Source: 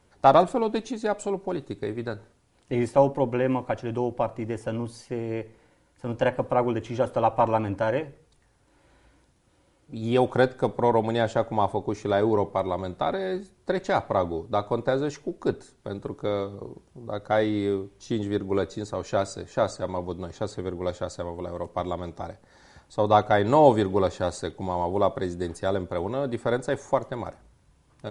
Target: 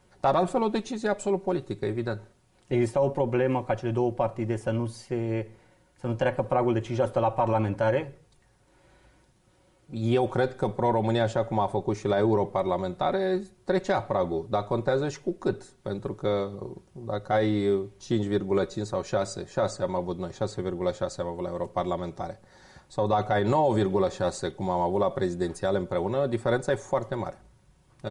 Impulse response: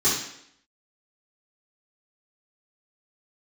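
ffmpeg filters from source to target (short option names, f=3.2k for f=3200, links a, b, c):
-af "equalizer=f=110:t=o:w=0.24:g=9,aecho=1:1:5.4:0.43,alimiter=limit=-14dB:level=0:latency=1:release=43"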